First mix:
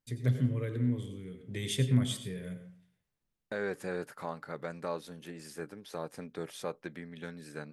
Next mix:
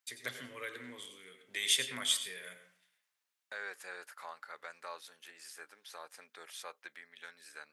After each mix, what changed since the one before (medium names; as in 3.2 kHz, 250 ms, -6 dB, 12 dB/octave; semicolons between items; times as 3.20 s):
first voice +8.0 dB; master: add high-pass 1.2 kHz 12 dB/octave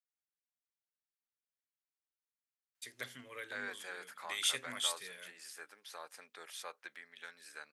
first voice: entry +2.75 s; reverb: off